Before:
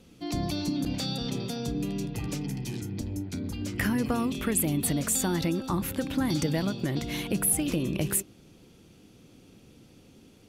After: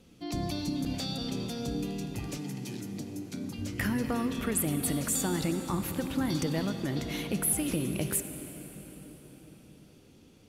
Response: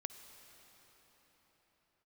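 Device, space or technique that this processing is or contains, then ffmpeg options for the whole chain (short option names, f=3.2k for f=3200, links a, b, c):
cathedral: -filter_complex "[1:a]atrim=start_sample=2205[a];[0:a][a]afir=irnorm=-1:irlink=0,asettb=1/sr,asplit=3[b][c][d];[b]atrim=end=2.374[e];[c]atrim=start=2.37:end=3.58,asetpts=PTS-STARTPTS,afade=t=in:d=0.004:c=qsin,afade=t=out:st=1.206:d=0.004:c=qsin,highpass=f=130:w=0.5412,highpass=f=130:w=1.3066[f];[d]atrim=start=3.576[g];[e][f]acrossfade=d=0.004:c1=hsin:c2=qsin[h];[h][g]acrossfade=d=0.004:c1=qsin:c2=hsin"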